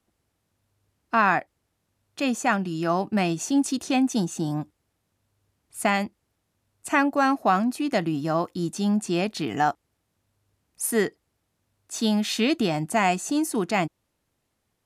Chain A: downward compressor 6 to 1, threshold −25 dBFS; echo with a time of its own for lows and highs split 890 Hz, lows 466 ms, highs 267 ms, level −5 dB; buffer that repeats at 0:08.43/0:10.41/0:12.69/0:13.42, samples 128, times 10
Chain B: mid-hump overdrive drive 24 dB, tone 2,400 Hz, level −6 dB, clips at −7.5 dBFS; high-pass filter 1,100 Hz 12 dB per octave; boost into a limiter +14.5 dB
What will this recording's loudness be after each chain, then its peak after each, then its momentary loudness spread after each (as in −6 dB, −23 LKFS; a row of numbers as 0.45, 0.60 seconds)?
−30.0, −12.0 LKFS; −14.0, −1.0 dBFS; 11, 7 LU